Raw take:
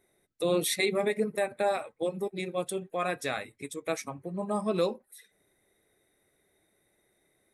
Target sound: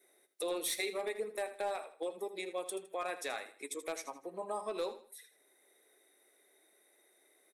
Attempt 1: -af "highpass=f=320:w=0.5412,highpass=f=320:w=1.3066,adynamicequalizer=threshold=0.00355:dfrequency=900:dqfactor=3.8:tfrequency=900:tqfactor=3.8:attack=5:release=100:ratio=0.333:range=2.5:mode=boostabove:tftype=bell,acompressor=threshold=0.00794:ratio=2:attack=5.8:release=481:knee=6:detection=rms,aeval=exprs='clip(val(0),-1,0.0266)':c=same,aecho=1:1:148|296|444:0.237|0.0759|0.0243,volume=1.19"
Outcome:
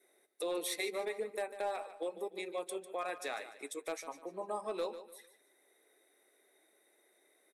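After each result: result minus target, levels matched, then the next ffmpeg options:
echo 68 ms late; 8 kHz band -2.5 dB
-af "highpass=f=320:w=0.5412,highpass=f=320:w=1.3066,adynamicequalizer=threshold=0.00355:dfrequency=900:dqfactor=3.8:tfrequency=900:tqfactor=3.8:attack=5:release=100:ratio=0.333:range=2.5:mode=boostabove:tftype=bell,acompressor=threshold=0.00794:ratio=2:attack=5.8:release=481:knee=6:detection=rms,aeval=exprs='clip(val(0),-1,0.0266)':c=same,aecho=1:1:80|160|240:0.237|0.0759|0.0243,volume=1.19"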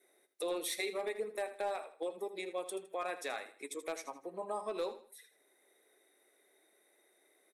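8 kHz band -2.5 dB
-af "highpass=f=320:w=0.5412,highpass=f=320:w=1.3066,adynamicequalizer=threshold=0.00355:dfrequency=900:dqfactor=3.8:tfrequency=900:tqfactor=3.8:attack=5:release=100:ratio=0.333:range=2.5:mode=boostabove:tftype=bell,acompressor=threshold=0.00794:ratio=2:attack=5.8:release=481:knee=6:detection=rms,highshelf=f=4000:g=4,aeval=exprs='clip(val(0),-1,0.0266)':c=same,aecho=1:1:80|160|240:0.237|0.0759|0.0243,volume=1.19"

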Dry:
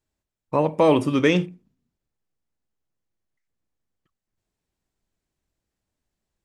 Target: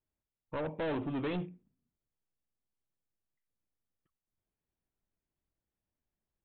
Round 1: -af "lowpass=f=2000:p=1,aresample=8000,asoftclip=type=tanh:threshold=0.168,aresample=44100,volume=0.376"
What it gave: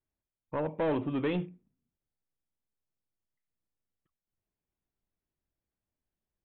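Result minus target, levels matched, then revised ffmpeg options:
saturation: distortion -6 dB
-af "lowpass=f=2000:p=1,aresample=8000,asoftclip=type=tanh:threshold=0.0708,aresample=44100,volume=0.376"

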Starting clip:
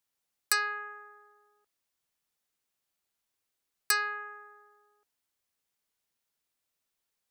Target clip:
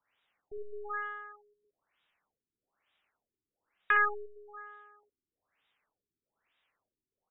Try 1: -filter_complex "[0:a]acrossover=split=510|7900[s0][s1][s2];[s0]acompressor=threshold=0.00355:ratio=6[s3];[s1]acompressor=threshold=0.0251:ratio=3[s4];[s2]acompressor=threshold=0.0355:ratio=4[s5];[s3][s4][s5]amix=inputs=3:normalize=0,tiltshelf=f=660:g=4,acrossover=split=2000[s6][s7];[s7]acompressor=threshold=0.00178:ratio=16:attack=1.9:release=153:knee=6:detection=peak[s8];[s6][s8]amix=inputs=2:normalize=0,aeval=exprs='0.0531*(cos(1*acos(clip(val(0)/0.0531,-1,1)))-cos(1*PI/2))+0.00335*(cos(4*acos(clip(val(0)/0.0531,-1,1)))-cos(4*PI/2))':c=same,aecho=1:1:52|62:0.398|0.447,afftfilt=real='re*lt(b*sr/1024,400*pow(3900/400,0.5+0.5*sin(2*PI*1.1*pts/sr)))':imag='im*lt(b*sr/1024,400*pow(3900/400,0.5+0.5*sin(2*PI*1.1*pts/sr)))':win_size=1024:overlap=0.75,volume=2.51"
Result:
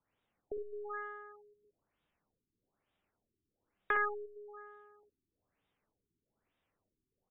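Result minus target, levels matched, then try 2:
500 Hz band +8.5 dB
-filter_complex "[0:a]acrossover=split=510|7900[s0][s1][s2];[s0]acompressor=threshold=0.00355:ratio=6[s3];[s1]acompressor=threshold=0.0251:ratio=3[s4];[s2]acompressor=threshold=0.0355:ratio=4[s5];[s3][s4][s5]amix=inputs=3:normalize=0,tiltshelf=f=660:g=-7,acrossover=split=2000[s6][s7];[s7]acompressor=threshold=0.00178:ratio=16:attack=1.9:release=153:knee=6:detection=peak[s8];[s6][s8]amix=inputs=2:normalize=0,aeval=exprs='0.0531*(cos(1*acos(clip(val(0)/0.0531,-1,1)))-cos(1*PI/2))+0.00335*(cos(4*acos(clip(val(0)/0.0531,-1,1)))-cos(4*PI/2))':c=same,aecho=1:1:52|62:0.398|0.447,afftfilt=real='re*lt(b*sr/1024,400*pow(3900/400,0.5+0.5*sin(2*PI*1.1*pts/sr)))':imag='im*lt(b*sr/1024,400*pow(3900/400,0.5+0.5*sin(2*PI*1.1*pts/sr)))':win_size=1024:overlap=0.75,volume=2.51"

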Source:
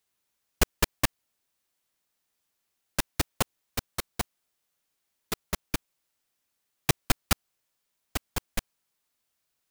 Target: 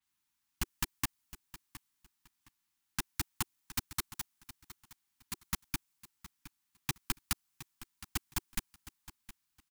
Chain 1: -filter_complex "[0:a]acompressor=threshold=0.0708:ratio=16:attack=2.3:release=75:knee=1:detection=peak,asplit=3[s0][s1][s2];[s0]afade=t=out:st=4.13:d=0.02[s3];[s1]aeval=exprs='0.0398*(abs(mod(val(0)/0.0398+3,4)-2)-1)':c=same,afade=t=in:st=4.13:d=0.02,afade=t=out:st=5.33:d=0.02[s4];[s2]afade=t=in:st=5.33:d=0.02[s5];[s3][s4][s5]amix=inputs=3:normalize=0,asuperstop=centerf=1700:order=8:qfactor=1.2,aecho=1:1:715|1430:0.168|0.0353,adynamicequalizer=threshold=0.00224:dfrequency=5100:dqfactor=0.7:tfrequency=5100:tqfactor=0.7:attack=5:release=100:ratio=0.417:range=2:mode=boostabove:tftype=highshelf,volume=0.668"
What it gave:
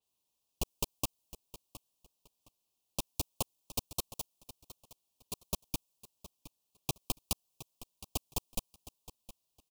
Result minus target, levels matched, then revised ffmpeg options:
500 Hz band +13.0 dB
-filter_complex "[0:a]acompressor=threshold=0.0708:ratio=16:attack=2.3:release=75:knee=1:detection=peak,asplit=3[s0][s1][s2];[s0]afade=t=out:st=4.13:d=0.02[s3];[s1]aeval=exprs='0.0398*(abs(mod(val(0)/0.0398+3,4)-2)-1)':c=same,afade=t=in:st=4.13:d=0.02,afade=t=out:st=5.33:d=0.02[s4];[s2]afade=t=in:st=5.33:d=0.02[s5];[s3][s4][s5]amix=inputs=3:normalize=0,asuperstop=centerf=530:order=8:qfactor=1.2,aecho=1:1:715|1430:0.168|0.0353,adynamicequalizer=threshold=0.00224:dfrequency=5100:dqfactor=0.7:tfrequency=5100:tqfactor=0.7:attack=5:release=100:ratio=0.417:range=2:mode=boostabove:tftype=highshelf,volume=0.668"

